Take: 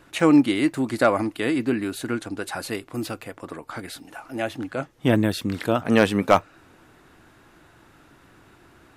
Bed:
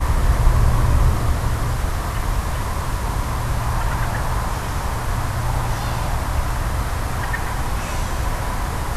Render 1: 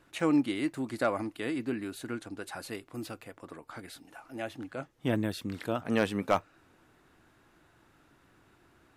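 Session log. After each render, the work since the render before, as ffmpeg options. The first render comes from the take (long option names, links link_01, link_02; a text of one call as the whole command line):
ffmpeg -i in.wav -af "volume=-10dB" out.wav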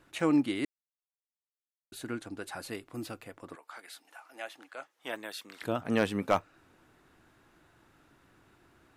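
ffmpeg -i in.wav -filter_complex "[0:a]asettb=1/sr,asplit=3[link_01][link_02][link_03];[link_01]atrim=end=3.554[link_04];[link_02]atrim=start=3.55:end=5.62,asetpts=PTS-STARTPTS,afade=type=in:duration=0.004:curve=qsin,afade=type=out:start_time=2.066:duration=0.004:curve=qsin,highpass=740[link_05];[link_03]atrim=start=5.616[link_06];[link_04][link_05]acrossfade=duration=0.004:curve1=hsin:curve2=qsin[link_07];[link_07][link_06]acrossfade=duration=0.004:curve1=qsin:curve2=hsin,asplit=3[link_08][link_09][link_10];[link_08]atrim=end=0.65,asetpts=PTS-STARTPTS,afade=type=out:start_time=0.646:duration=0.004:curve=hsin[link_11];[link_09]atrim=start=0.65:end=1.92,asetpts=PTS-STARTPTS,volume=0[link_12];[link_10]atrim=start=1.92,asetpts=PTS-STARTPTS,afade=type=in:duration=0.004:curve=hsin[link_13];[link_11][link_12][link_13]concat=n=3:v=0:a=1" out.wav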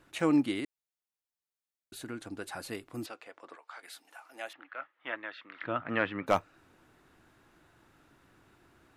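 ffmpeg -i in.wav -filter_complex "[0:a]asettb=1/sr,asplit=3[link_01][link_02][link_03];[link_01]atrim=end=0.604[link_04];[link_02]atrim=start=0.6:end=2.2,asetpts=PTS-STARTPTS,afade=type=in:duration=0.004:curve=qsin,afade=type=out:start_time=1.596:duration=0.004:curve=qsin,acompressor=threshold=-41dB:ratio=1.5:attack=3.2:release=140:knee=1:detection=peak[link_05];[link_03]atrim=start=2.196[link_06];[link_04][link_05]acrossfade=duration=0.004:curve1=hsin:curve2=qsin[link_07];[link_07][link_06]acrossfade=duration=0.004:curve1=qsin:curve2=hsin,asettb=1/sr,asplit=3[link_08][link_09][link_10];[link_08]atrim=end=3.064[link_11];[link_09]atrim=start=3.06:end=3.83,asetpts=PTS-STARTPTS,afade=type=in:duration=0.004:curve=qsin,afade=type=out:start_time=0.766:duration=0.004:curve=qsin,highpass=490,lowpass=5600[link_12];[link_10]atrim=start=3.826[link_13];[link_11][link_12]acrossfade=duration=0.004:curve1=hsin:curve2=qsin[link_14];[link_14][link_13]acrossfade=duration=0.004:curve1=qsin:curve2=hsin,asettb=1/sr,asplit=3[link_15][link_16][link_17];[link_15]atrim=end=4.534[link_18];[link_16]atrim=start=4.53:end=6.27,asetpts=PTS-STARTPTS,afade=type=in:duration=0.004:curve=qsin,afade=type=out:start_time=1.736:duration=0.004:curve=qsin,highpass=130,equalizer=frequency=210:width_type=q:width=4:gain=-9,equalizer=frequency=430:width_type=q:width=4:gain=-9,equalizer=frequency=760:width_type=q:width=4:gain=-4,equalizer=frequency=1300:width_type=q:width=4:gain=6,equalizer=frequency=1900:width_type=q:width=4:gain=5,lowpass=frequency=3000:width=0.5412,lowpass=frequency=3000:width=1.3066[link_19];[link_17]atrim=start=6.266[link_20];[link_18][link_19]acrossfade=duration=0.004:curve1=hsin:curve2=qsin[link_21];[link_21][link_20]acrossfade=duration=0.004:curve1=qsin:curve2=hsin" out.wav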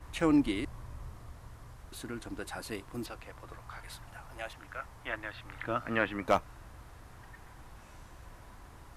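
ffmpeg -i in.wav -i bed.wav -filter_complex "[1:a]volume=-29dB[link_01];[0:a][link_01]amix=inputs=2:normalize=0" out.wav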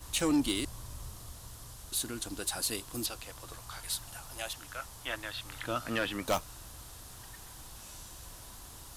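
ffmpeg -i in.wav -af "aexciter=amount=5:drive=4.7:freq=3000,asoftclip=type=tanh:threshold=-21dB" out.wav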